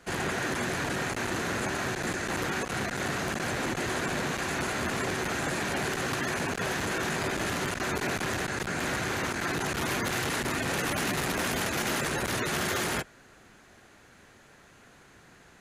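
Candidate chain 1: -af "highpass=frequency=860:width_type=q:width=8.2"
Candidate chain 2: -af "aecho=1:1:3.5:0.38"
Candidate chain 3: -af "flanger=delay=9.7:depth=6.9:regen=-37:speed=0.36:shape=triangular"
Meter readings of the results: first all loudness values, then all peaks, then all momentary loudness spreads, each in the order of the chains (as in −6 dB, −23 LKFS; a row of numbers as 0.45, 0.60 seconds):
−25.5, −29.5, −33.5 LKFS; −10.5, −20.5, −24.0 dBFS; 2, 2, 2 LU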